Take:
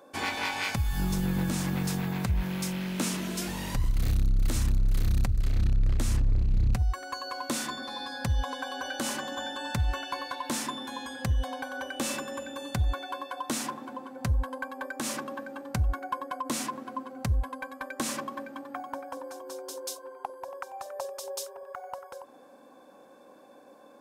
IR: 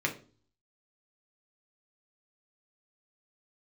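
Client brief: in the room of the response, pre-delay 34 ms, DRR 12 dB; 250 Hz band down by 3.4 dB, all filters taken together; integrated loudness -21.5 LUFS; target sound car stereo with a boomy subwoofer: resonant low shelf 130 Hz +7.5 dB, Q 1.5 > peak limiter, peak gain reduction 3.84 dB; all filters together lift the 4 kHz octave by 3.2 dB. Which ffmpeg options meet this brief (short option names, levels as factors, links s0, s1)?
-filter_complex "[0:a]equalizer=f=250:t=o:g=-3,equalizer=f=4000:t=o:g=4,asplit=2[s0][s1];[1:a]atrim=start_sample=2205,adelay=34[s2];[s1][s2]afir=irnorm=-1:irlink=0,volume=0.1[s3];[s0][s3]amix=inputs=2:normalize=0,lowshelf=f=130:t=q:w=1.5:g=7.5,volume=1.88,alimiter=limit=0.447:level=0:latency=1"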